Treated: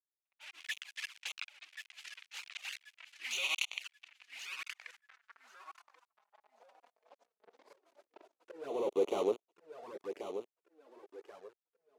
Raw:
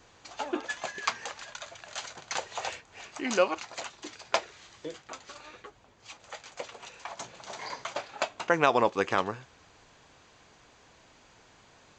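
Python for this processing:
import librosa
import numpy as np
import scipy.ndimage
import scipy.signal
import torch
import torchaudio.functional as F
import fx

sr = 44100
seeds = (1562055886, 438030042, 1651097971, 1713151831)

p1 = fx.fuzz(x, sr, gain_db=46.0, gate_db=-37.0)
p2 = fx.env_lowpass(p1, sr, base_hz=930.0, full_db=-17.0)
p3 = fx.auto_swell(p2, sr, attack_ms=636.0)
p4 = fx.riaa(p3, sr, side='recording')
p5 = p4 + fx.echo_feedback(p4, sr, ms=1083, feedback_pct=31, wet_db=-9.0, dry=0)
p6 = fx.env_flanger(p5, sr, rest_ms=5.3, full_db=-22.5)
p7 = fx.filter_sweep_bandpass(p6, sr, from_hz=2500.0, to_hz=410.0, start_s=4.43, end_s=7.57, q=2.7)
y = F.gain(torch.from_numpy(p7), -1.5).numpy()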